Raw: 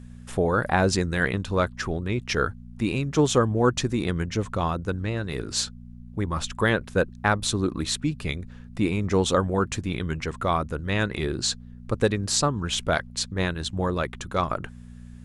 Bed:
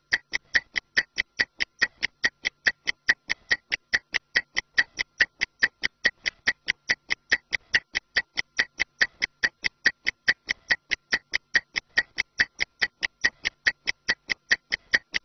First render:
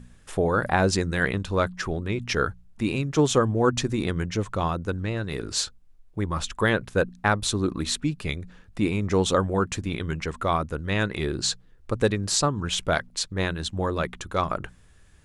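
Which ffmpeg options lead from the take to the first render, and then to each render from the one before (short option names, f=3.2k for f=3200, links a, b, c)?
-af "bandreject=f=60:t=h:w=4,bandreject=f=120:t=h:w=4,bandreject=f=180:t=h:w=4,bandreject=f=240:t=h:w=4"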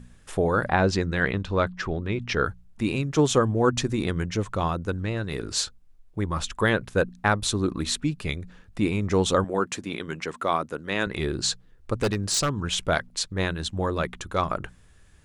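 -filter_complex "[0:a]asettb=1/sr,asplit=3[a][b][c];[a]atrim=end=0.664[d];[b]atrim=start=0.66:end=2.45,asetpts=PTS-STARTPTS,afade=t=in:d=0.004:c=qsin,afade=t=out:st=1.786:d=0.004:c=qsin,lowpass=4.8k[e];[c]atrim=start=2.446[f];[d][e]acrossfade=d=0.004:c1=hsin:c2=qsin[g];[g][f]acrossfade=d=0.004:c1=qsin:c2=hsin,asettb=1/sr,asplit=3[h][i][j];[h]atrim=end=9.444[k];[i]atrim=start=9.44:end=11.07,asetpts=PTS-STARTPTS,afade=t=in:d=0.004:c=qsin,afade=t=out:st=1.626:d=0.004:c=qsin,highpass=220[l];[j]atrim=start=11.066[m];[k][l]acrossfade=d=0.004:c1=hsin:c2=qsin[n];[n][m]acrossfade=d=0.004:c1=qsin:c2=hsin,asettb=1/sr,asplit=3[o][p][q];[o]atrim=end=11.994[r];[p]atrim=start=11.99:end=12.55,asetpts=PTS-STARTPTS,afade=t=in:d=0.004:c=qsin,afade=t=out:st=0.556:d=0.004:c=qsin,aeval=exprs='0.15*(abs(mod(val(0)/0.15+3,4)-2)-1)':c=same[s];[q]atrim=start=12.546[t];[r][s]acrossfade=d=0.004:c1=hsin:c2=qsin[u];[u][t]acrossfade=d=0.004:c1=qsin:c2=hsin"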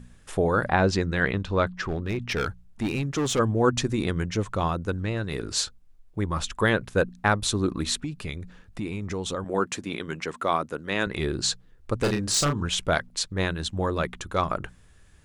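-filter_complex "[0:a]asplit=3[a][b][c];[a]afade=t=out:st=1.83:d=0.02[d];[b]asoftclip=type=hard:threshold=-22dB,afade=t=in:st=1.83:d=0.02,afade=t=out:st=3.38:d=0.02[e];[c]afade=t=in:st=3.38:d=0.02[f];[d][e][f]amix=inputs=3:normalize=0,asettb=1/sr,asplit=3[g][h][i];[g]atrim=end=8.044[j];[h]atrim=start=8.04:end=9.46,asetpts=PTS-STARTPTS,afade=t=in:d=0.004:c=qsin,afade=t=out:st=1.416:d=0.004:c=qsin,acompressor=threshold=-29dB:ratio=3:attack=3.2:release=140:knee=1:detection=peak[k];[i]atrim=start=9.456[l];[j][k]acrossfade=d=0.004:c1=hsin:c2=qsin[m];[m][l]acrossfade=d=0.004:c1=qsin:c2=hsin,asettb=1/sr,asplit=3[n][o][p];[n]atrim=end=12.004[q];[o]atrim=start=12:end=12.66,asetpts=PTS-STARTPTS,afade=t=in:d=0.004:c=qsin,afade=t=out:st=0.656:d=0.004:c=qsin,asplit=2[r][s];[s]adelay=34,volume=-5.5dB[t];[r][t]amix=inputs=2:normalize=0,atrim=end_sample=29106[u];[p]atrim=start=12.656[v];[q][u]acrossfade=d=0.004:c1=hsin:c2=qsin[w];[w][v]acrossfade=d=0.004:c1=qsin:c2=hsin"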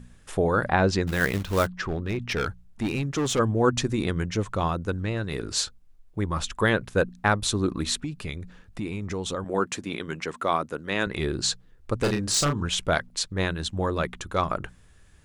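-filter_complex "[0:a]asettb=1/sr,asplit=3[a][b][c];[a]atrim=end=1.074[d];[b]atrim=start=1.07:end=1.67,asetpts=PTS-STARTPTS,afade=t=in:d=0.004:c=qsin,afade=t=out:st=0.596:d=0.004:c=qsin,acrusher=bits=3:mode=log:mix=0:aa=0.000001[e];[c]atrim=start=1.666[f];[d][e]acrossfade=d=0.004:c1=hsin:c2=qsin[g];[g][f]acrossfade=d=0.004:c1=qsin:c2=hsin"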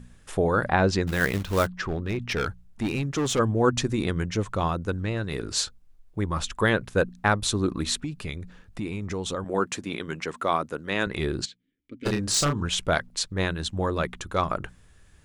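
-filter_complex "[0:a]asplit=3[a][b][c];[a]afade=t=out:st=11.44:d=0.02[d];[b]asplit=3[e][f][g];[e]bandpass=f=270:t=q:w=8,volume=0dB[h];[f]bandpass=f=2.29k:t=q:w=8,volume=-6dB[i];[g]bandpass=f=3.01k:t=q:w=8,volume=-9dB[j];[h][i][j]amix=inputs=3:normalize=0,afade=t=in:st=11.44:d=0.02,afade=t=out:st=12.05:d=0.02[k];[c]afade=t=in:st=12.05:d=0.02[l];[d][k][l]amix=inputs=3:normalize=0"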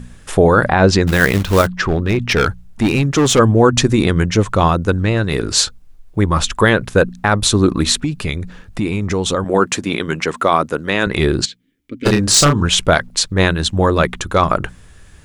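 -af "alimiter=level_in=12.5dB:limit=-1dB:release=50:level=0:latency=1"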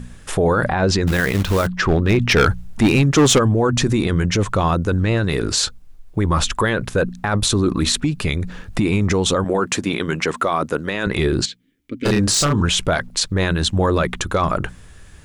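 -af "dynaudnorm=f=120:g=9:m=11.5dB,alimiter=limit=-9dB:level=0:latency=1:release=13"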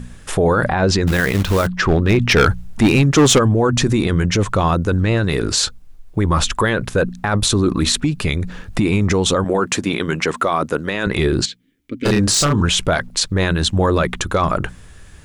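-af "volume=1.5dB"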